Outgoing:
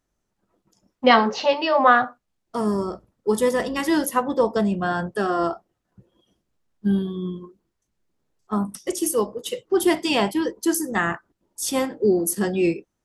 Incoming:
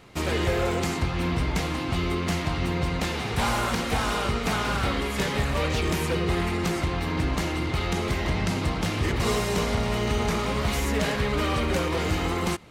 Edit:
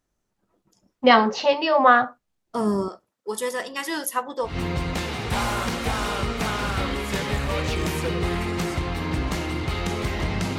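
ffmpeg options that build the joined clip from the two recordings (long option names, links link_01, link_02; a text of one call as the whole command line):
ffmpeg -i cue0.wav -i cue1.wav -filter_complex "[0:a]asettb=1/sr,asplit=3[link_01][link_02][link_03];[link_01]atrim=end=2.884[link_04];[link_02]atrim=start=2.88:end=4.6,asetpts=PTS-STARTPTS,afade=type=in:duration=0.004:curve=qsin,afade=type=out:start_time=1.716:duration=0.004:curve=qsin,highpass=frequency=1100:poles=1[link_05];[link_03]atrim=start=4.596[link_06];[link_04][link_05]acrossfade=duration=0.004:curve1=hsin:curve2=qsin[link_07];[link_07][link_06]acrossfade=duration=0.004:curve1=qsin:curve2=hsin,apad=whole_dur=10.58,atrim=end=10.58,atrim=end=4.6,asetpts=PTS-STARTPTS[link_08];[1:a]atrim=start=2.48:end=8.64,asetpts=PTS-STARTPTS[link_09];[link_08][link_09]acrossfade=duration=0.18:curve1=tri:curve2=tri" out.wav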